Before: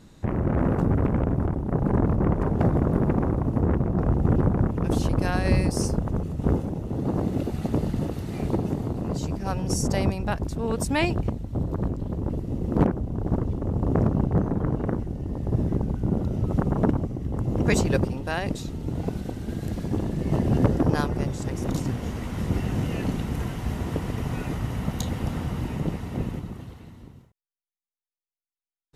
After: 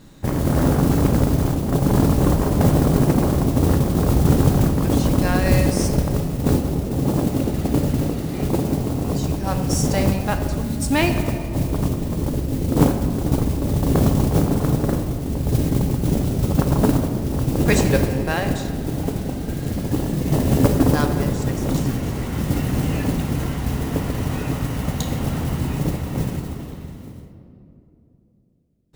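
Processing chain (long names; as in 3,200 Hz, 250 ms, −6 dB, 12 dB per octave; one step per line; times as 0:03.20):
gain on a spectral selection 0:10.61–0:10.92, 330–3,500 Hz −26 dB
noise that follows the level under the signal 18 dB
on a send: convolution reverb RT60 3.0 s, pre-delay 4 ms, DRR 5 dB
on the sum: level +4 dB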